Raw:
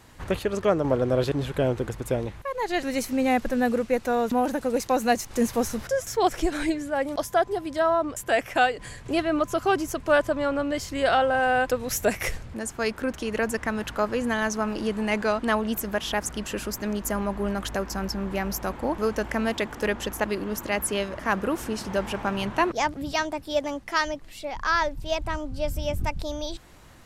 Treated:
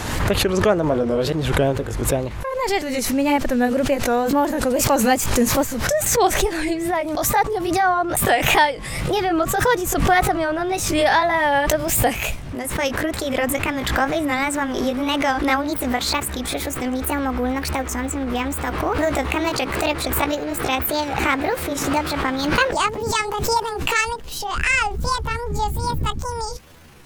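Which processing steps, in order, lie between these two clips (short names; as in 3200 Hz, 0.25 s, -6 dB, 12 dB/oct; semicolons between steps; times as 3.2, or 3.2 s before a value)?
gliding pitch shift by +7.5 st starting unshifted; wow and flutter 130 cents; backwards sustainer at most 41 dB/s; gain +5 dB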